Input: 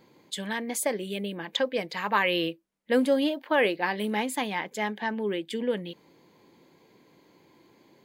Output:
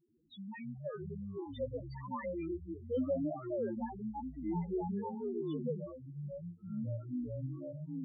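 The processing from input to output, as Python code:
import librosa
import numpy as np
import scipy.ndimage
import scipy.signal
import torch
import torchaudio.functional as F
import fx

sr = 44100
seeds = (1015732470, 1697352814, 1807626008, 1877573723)

y = fx.cvsd(x, sr, bps=32000)
y = fx.spec_topn(y, sr, count=1)
y = fx.echo_pitch(y, sr, ms=85, semitones=-7, count=3, db_per_echo=-3.0)
y = y * 10.0 ** (-4.5 / 20.0)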